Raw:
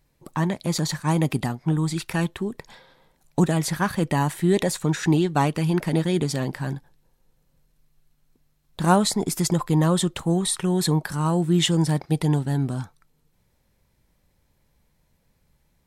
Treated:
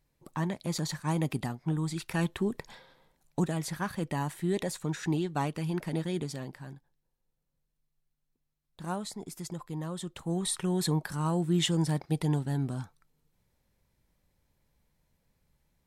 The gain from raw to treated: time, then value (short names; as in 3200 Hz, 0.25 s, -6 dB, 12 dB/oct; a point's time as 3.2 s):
2.02 s -8 dB
2.5 s -1 dB
3.5 s -10 dB
6.15 s -10 dB
6.75 s -17 dB
9.96 s -17 dB
10.47 s -7 dB